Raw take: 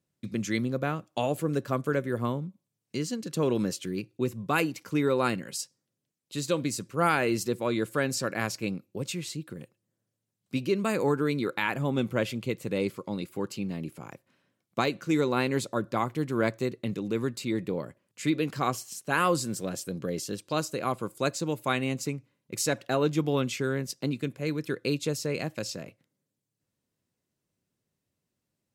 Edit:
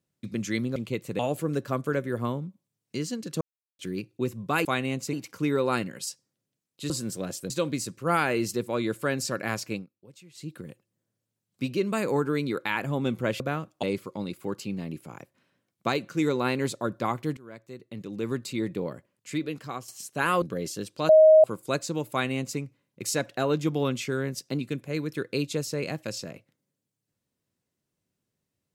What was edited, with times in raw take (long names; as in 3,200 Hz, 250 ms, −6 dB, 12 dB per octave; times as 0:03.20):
0:00.76–0:01.19: swap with 0:12.32–0:12.75
0:03.41–0:03.79: silence
0:08.64–0:09.41: duck −18 dB, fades 0.15 s
0:16.29–0:17.26: fade in quadratic, from −20.5 dB
0:17.86–0:18.80: fade out, to −11 dB
0:19.34–0:19.94: move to 0:06.42
0:20.61–0:20.96: beep over 628 Hz −11 dBFS
0:21.63–0:22.11: duplicate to 0:04.65